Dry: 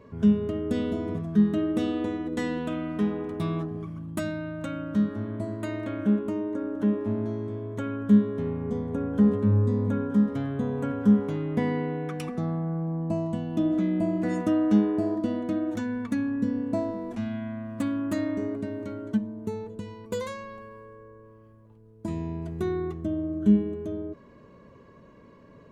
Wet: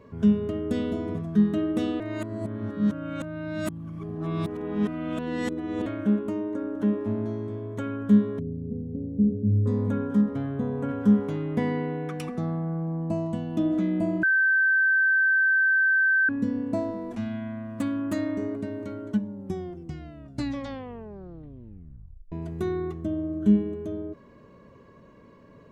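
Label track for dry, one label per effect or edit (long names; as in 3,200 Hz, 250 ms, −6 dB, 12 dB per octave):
2.000000	5.860000	reverse
8.390000	9.660000	Gaussian smoothing sigma 22 samples
10.210000	10.890000	high-shelf EQ 2,600 Hz −9 dB
14.230000	16.290000	beep over 1,550 Hz −18 dBFS
19.080000	19.080000	tape stop 3.24 s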